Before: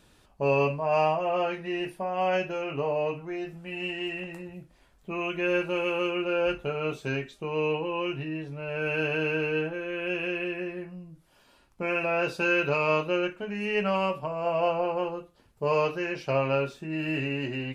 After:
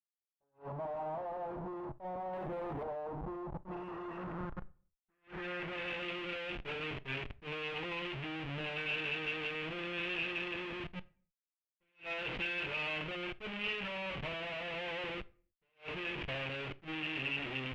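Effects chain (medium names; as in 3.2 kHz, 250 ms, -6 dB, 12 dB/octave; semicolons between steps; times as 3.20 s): Schmitt trigger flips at -39.5 dBFS; expander -21 dBFS; low-pass sweep 890 Hz -> 2.5 kHz, 3.51–6.10 s; on a send at -17 dB: reverberation RT60 0.45 s, pre-delay 6 ms; on the sum: dynamic bell 3 kHz, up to +8 dB, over -60 dBFS, Q 2.1; 2.33–2.83 s: waveshaping leveller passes 1; attacks held to a fixed rise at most 270 dB/s; trim +1 dB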